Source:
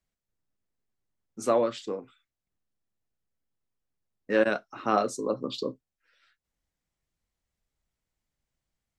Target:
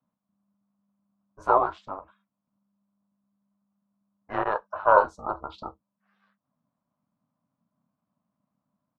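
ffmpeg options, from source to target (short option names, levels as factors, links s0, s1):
-af "firequalizer=gain_entry='entry(100,0);entry(150,-16);entry(500,-18);entry(810,12);entry(1700,-13);entry(8400,-29)':delay=0.05:min_phase=1,aeval=exprs='val(0)*sin(2*PI*200*n/s)':c=same,volume=2.51"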